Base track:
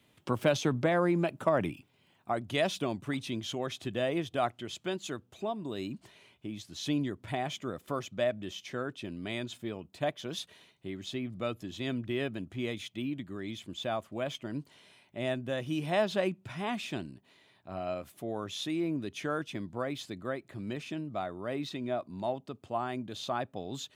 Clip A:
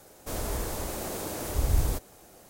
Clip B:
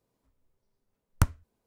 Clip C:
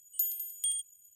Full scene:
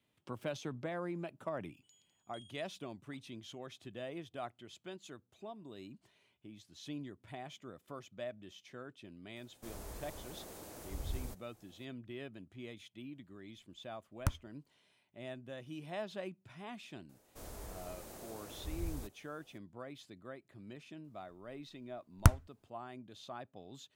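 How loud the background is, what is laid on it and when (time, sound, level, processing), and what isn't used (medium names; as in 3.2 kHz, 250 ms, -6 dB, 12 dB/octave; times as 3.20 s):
base track -13 dB
1.70 s: add C -13 dB + low-pass 4.6 kHz 24 dB/octave
9.36 s: add A -15.5 dB
13.05 s: add B -10 dB
17.09 s: add A -16 dB
21.04 s: add B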